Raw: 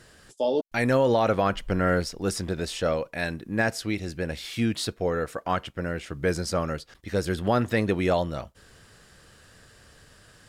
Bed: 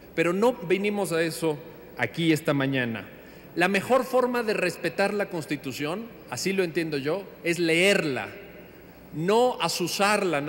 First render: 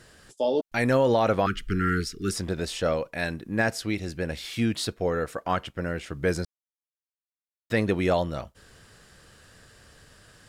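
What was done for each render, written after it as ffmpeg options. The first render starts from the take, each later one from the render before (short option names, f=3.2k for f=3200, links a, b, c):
-filter_complex "[0:a]asettb=1/sr,asplit=3[a][b][c];[a]atrim=end=1.464[d];[b]atrim=start=1.46:end=2.32,asetpts=PTS-STARTPTS,afade=t=in:d=0.004:c=qsin,afade=t=out:st=0.856:d=0.004:c=qsin,asuperstop=centerf=720:order=20:qfactor=0.95[e];[c]atrim=start=2.316[f];[d][e]acrossfade=d=0.004:c1=hsin:c2=qsin[g];[g][f]acrossfade=d=0.004:c1=qsin:c2=hsin,asplit=3[h][i][j];[h]atrim=end=6.45,asetpts=PTS-STARTPTS,afade=t=out:st=6.446:d=0.004:c=hsin[k];[i]atrim=start=6.45:end=7.7,asetpts=PTS-STARTPTS,volume=0[l];[j]atrim=start=7.7,asetpts=PTS-STARTPTS,afade=t=in:d=0.004:c=hsin[m];[k][l][m]concat=n=3:v=0:a=1"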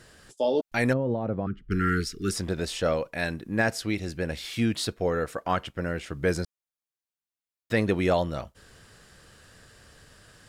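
-filter_complex "[0:a]asplit=3[a][b][c];[a]afade=t=out:st=0.92:d=0.02[d];[b]bandpass=f=150:t=q:w=0.74,afade=t=in:st=0.92:d=0.02,afade=t=out:st=1.7:d=0.02[e];[c]afade=t=in:st=1.7:d=0.02[f];[d][e][f]amix=inputs=3:normalize=0"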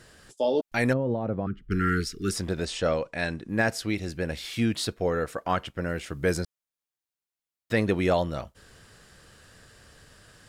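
-filter_complex "[0:a]asettb=1/sr,asplit=3[a][b][c];[a]atrim=end=2.654[d];[b]atrim=start=2.65:end=3.49,asetpts=PTS-STARTPTS,afade=t=in:d=0.004:c=qsin,afade=t=out:st=0.836:d=0.004:c=qsin,lowpass=f=9.1k:w=0.5412,lowpass=f=9.1k:w=1.3066[e];[c]atrim=start=3.486[f];[d][e]acrossfade=d=0.004:c1=hsin:c2=qsin[g];[g][f]acrossfade=d=0.004:c1=qsin:c2=hsin,asettb=1/sr,asplit=3[h][i][j];[h]atrim=end=5.894[k];[i]atrim=start=5.89:end=6.39,asetpts=PTS-STARTPTS,afade=t=in:d=0.004:c=qsin,afade=t=out:st=0.496:d=0.004:c=qsin,highshelf=f=8.1k:g=7[l];[j]atrim=start=6.386[m];[k][l]acrossfade=d=0.004:c1=hsin:c2=qsin[n];[n][m]acrossfade=d=0.004:c1=qsin:c2=hsin"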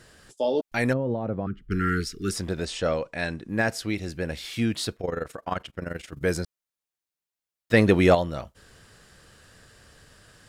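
-filter_complex "[0:a]asettb=1/sr,asplit=3[a][b][c];[a]atrim=end=4.964[d];[b]atrim=start=4.96:end=6.22,asetpts=PTS-STARTPTS,afade=t=in:d=0.004:c=qsin,afade=t=out:st=1.256:d=0.004:c=qsin,tremolo=f=23:d=0.824[e];[c]atrim=start=6.216[f];[d][e]acrossfade=d=0.004:c1=hsin:c2=qsin[g];[g][f]acrossfade=d=0.004:c1=qsin:c2=hsin,asettb=1/sr,asplit=3[h][i][j];[h]atrim=end=7.734[k];[i]atrim=start=7.73:end=8.15,asetpts=PTS-STARTPTS,afade=t=in:d=0.004:c=qsin,afade=t=out:st=0.416:d=0.004:c=qsin,acontrast=67[l];[j]atrim=start=8.146[m];[k][l]acrossfade=d=0.004:c1=hsin:c2=qsin[n];[n][m]acrossfade=d=0.004:c1=qsin:c2=hsin"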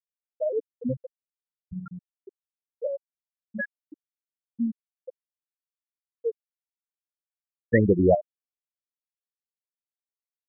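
-af "afftfilt=real='re*gte(hypot(re,im),0.501)':imag='im*gte(hypot(re,im),0.501)':win_size=1024:overlap=0.75"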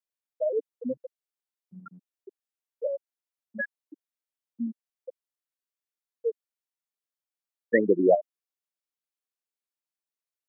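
-af "highpass=f=250:w=0.5412,highpass=f=250:w=1.3066"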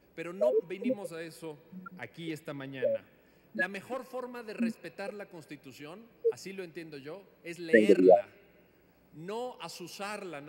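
-filter_complex "[1:a]volume=-16.5dB[a];[0:a][a]amix=inputs=2:normalize=0"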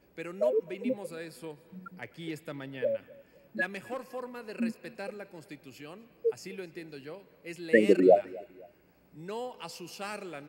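-af "aecho=1:1:256|512:0.0708|0.0255"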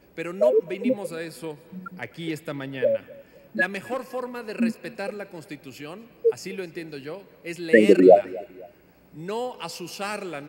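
-af "volume=8dB,alimiter=limit=-3dB:level=0:latency=1"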